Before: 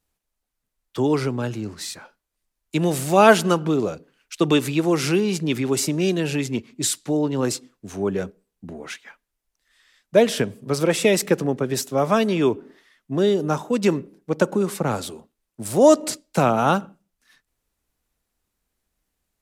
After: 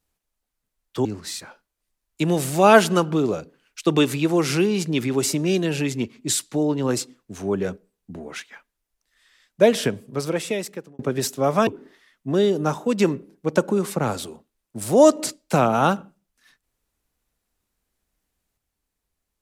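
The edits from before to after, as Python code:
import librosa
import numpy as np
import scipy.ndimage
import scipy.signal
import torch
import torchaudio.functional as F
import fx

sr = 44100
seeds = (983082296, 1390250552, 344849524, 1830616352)

y = fx.edit(x, sr, fx.cut(start_s=1.05, length_s=0.54),
    fx.fade_out_span(start_s=10.37, length_s=1.16),
    fx.cut(start_s=12.21, length_s=0.3), tone=tone)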